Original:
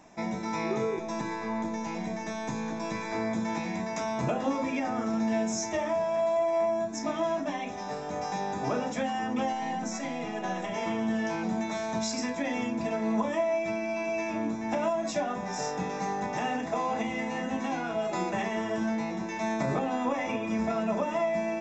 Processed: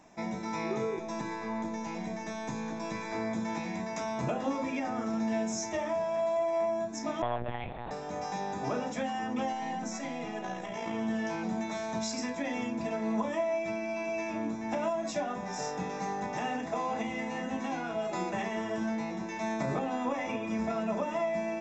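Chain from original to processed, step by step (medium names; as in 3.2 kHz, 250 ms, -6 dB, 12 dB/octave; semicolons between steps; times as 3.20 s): 7.22–7.91 s: monotone LPC vocoder at 8 kHz 120 Hz; 10.43–10.94 s: AM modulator 58 Hz, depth 30%; trim -3 dB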